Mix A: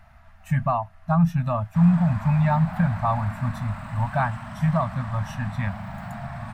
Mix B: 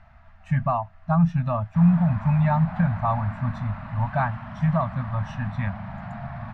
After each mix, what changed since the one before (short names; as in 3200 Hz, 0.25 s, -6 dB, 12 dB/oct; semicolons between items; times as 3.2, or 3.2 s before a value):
background: add air absorption 110 m; master: add air absorption 140 m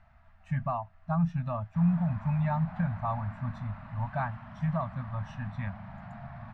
speech -8.0 dB; background -9.0 dB